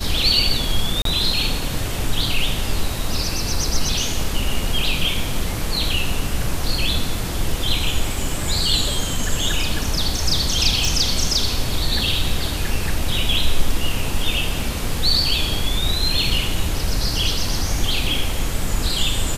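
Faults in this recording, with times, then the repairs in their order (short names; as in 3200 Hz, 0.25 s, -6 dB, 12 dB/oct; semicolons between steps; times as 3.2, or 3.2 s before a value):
1.02–1.05 gap 33 ms
10.85 pop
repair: de-click; interpolate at 1.02, 33 ms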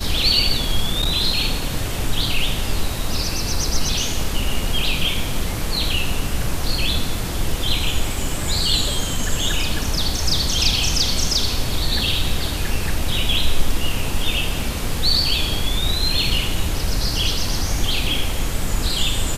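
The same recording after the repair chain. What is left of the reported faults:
none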